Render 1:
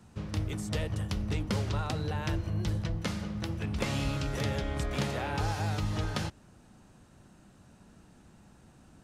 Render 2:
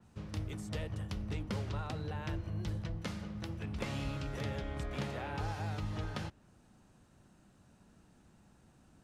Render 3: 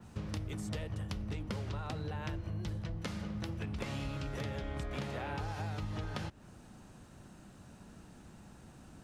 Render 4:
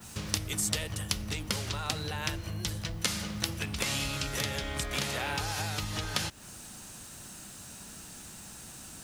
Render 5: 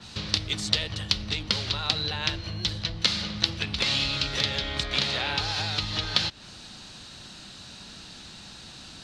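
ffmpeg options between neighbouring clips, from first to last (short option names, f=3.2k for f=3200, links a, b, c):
-af "adynamicequalizer=threshold=0.002:dfrequency=4000:dqfactor=0.7:tfrequency=4000:tqfactor=0.7:attack=5:release=100:ratio=0.375:range=3:mode=cutabove:tftype=highshelf,volume=-6.5dB"
-af "acompressor=threshold=-45dB:ratio=6,volume=9dB"
-af "crystalizer=i=9.5:c=0,volume=1.5dB"
-af "lowpass=f=4.1k:t=q:w=3.5,volume=2dB"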